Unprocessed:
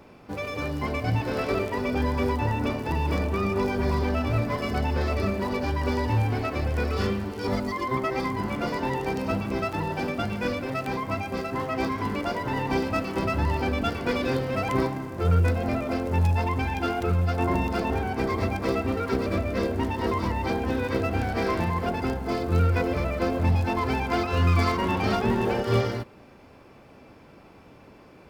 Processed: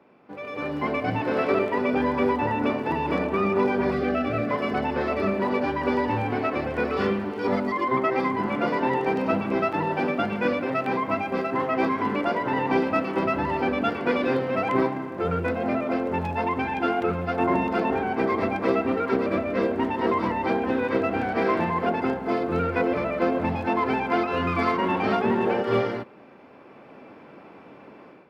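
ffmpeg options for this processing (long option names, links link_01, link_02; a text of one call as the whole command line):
ffmpeg -i in.wav -filter_complex "[0:a]asettb=1/sr,asplit=3[link_01][link_02][link_03];[link_01]atrim=end=3.914[link_04];[link_02]atrim=start=3.91:end=4.51,asetpts=PTS-STARTPTS,afade=type=in:duration=0.004:curve=qsin,afade=type=out:start_time=0.596:duration=0.004:curve=qsin,asuperstop=centerf=940:order=20:qfactor=4.2[link_05];[link_03]atrim=start=4.506[link_06];[link_04][link_05]acrossfade=duration=0.004:curve1=hsin:curve2=qsin[link_07];[link_07][link_06]acrossfade=duration=0.004:curve1=qsin:curve2=hsin,dynaudnorm=framelen=390:gausssize=3:maxgain=11.5dB,acrossover=split=160 3200:gain=0.0794 1 0.141[link_08][link_09][link_10];[link_08][link_09][link_10]amix=inputs=3:normalize=0,volume=-6dB" out.wav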